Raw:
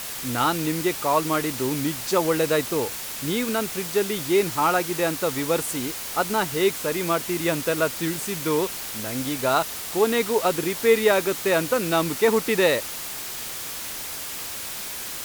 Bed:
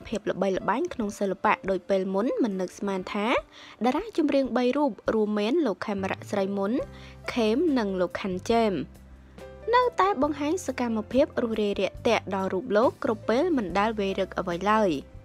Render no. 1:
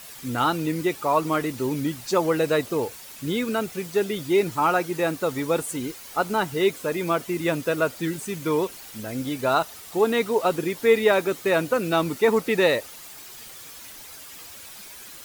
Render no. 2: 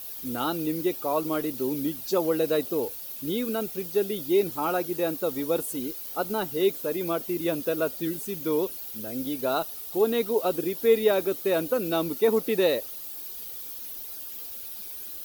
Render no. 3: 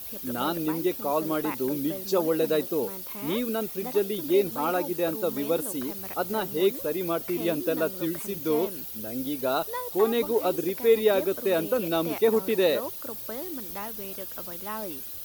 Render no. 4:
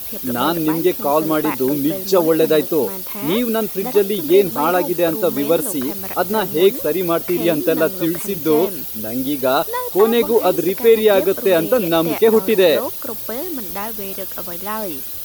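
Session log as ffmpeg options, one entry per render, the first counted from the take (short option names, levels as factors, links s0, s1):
-af "afftdn=nr=11:nf=-33"
-af "equalizer=f=125:t=o:w=1:g=-11,equalizer=f=1000:t=o:w=1:g=-7,equalizer=f=2000:t=o:w=1:g=-10,equalizer=f=8000:t=o:w=1:g=-10,equalizer=f=16000:t=o:w=1:g=10"
-filter_complex "[1:a]volume=0.211[s0];[0:a][s0]amix=inputs=2:normalize=0"
-af "volume=3.16,alimiter=limit=0.708:level=0:latency=1"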